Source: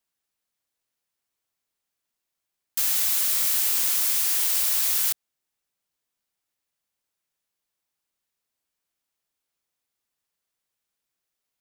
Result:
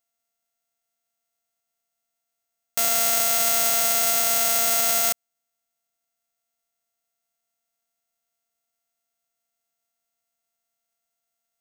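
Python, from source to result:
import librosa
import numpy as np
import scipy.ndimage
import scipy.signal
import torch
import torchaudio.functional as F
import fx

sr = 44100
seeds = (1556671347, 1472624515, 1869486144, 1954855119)

y = np.r_[np.sort(x[:len(x) // 64 * 64].reshape(-1, 64), axis=1).ravel(), x[len(x) // 64 * 64:]]
y = (np.kron(y[::6], np.eye(6)[0]) * 6)[:len(y)]
y = y * librosa.db_to_amplitude(-6.0)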